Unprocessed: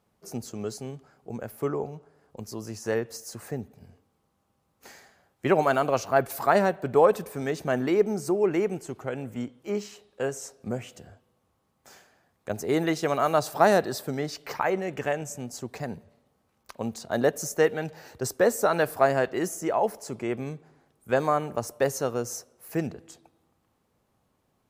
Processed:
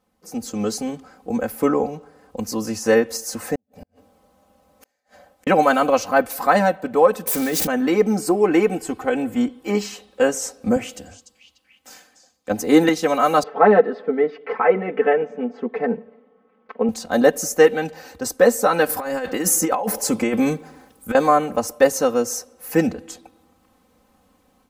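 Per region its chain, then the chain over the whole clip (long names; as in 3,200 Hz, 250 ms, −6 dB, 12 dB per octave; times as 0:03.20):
0:03.55–0:05.47: parametric band 610 Hz +12.5 dB 0.39 octaves + downward compressor 12 to 1, threshold −41 dBFS + gate with flip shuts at −40 dBFS, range −39 dB
0:07.27–0:07.67: spike at every zero crossing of −27 dBFS + envelope flattener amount 100%
0:08.19–0:09.86: notch filter 6,100 Hz, Q 7.3 + comb filter 2.7 ms, depth 31%
0:10.76–0:12.89: parametric band 300 Hz +4 dB 0.27 octaves + echo through a band-pass that steps 294 ms, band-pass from 5,700 Hz, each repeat −0.7 octaves, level −5 dB + multiband upward and downward expander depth 40%
0:13.43–0:16.89: loudspeaker in its box 270–2,100 Hz, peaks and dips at 270 Hz −5 dB, 390 Hz +10 dB, 670 Hz −4 dB, 990 Hz −4 dB, 1,600 Hz −8 dB + comb filter 4.5 ms, depth 86%
0:18.89–0:21.15: high-shelf EQ 9,700 Hz +8.5 dB + notch filter 680 Hz, Q 20 + compressor whose output falls as the input rises −31 dBFS
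whole clip: comb filter 3.9 ms, depth 93%; automatic gain control gain up to 10.5 dB; level −1 dB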